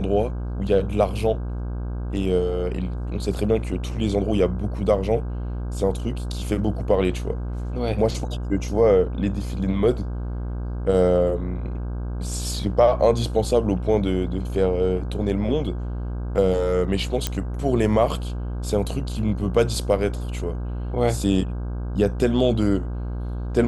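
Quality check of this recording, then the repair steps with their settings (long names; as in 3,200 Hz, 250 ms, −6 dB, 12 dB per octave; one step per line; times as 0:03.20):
mains buzz 60 Hz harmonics 27 −28 dBFS
0:17.27: click −7 dBFS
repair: click removal
hum removal 60 Hz, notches 27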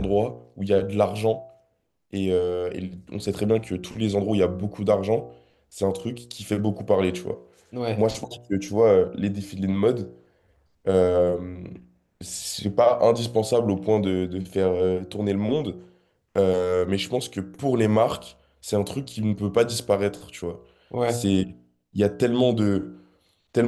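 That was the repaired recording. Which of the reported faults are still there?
none of them is left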